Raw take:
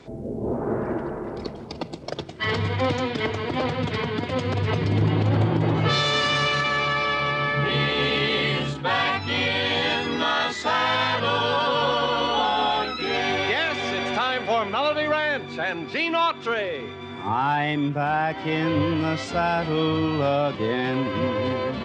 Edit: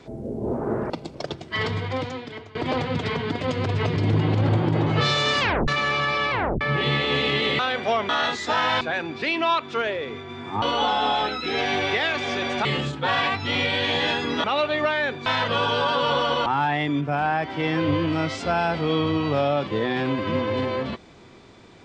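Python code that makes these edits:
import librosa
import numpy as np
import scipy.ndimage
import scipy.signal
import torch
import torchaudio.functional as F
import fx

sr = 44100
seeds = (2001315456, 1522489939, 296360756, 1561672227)

y = fx.edit(x, sr, fx.cut(start_s=0.9, length_s=0.88),
    fx.fade_out_to(start_s=2.36, length_s=1.07, floor_db=-20.5),
    fx.tape_stop(start_s=6.28, length_s=0.28),
    fx.tape_stop(start_s=7.19, length_s=0.3),
    fx.swap(start_s=8.47, length_s=1.79, other_s=14.21, other_length_s=0.5),
    fx.swap(start_s=10.98, length_s=1.2, other_s=15.53, other_length_s=1.81), tone=tone)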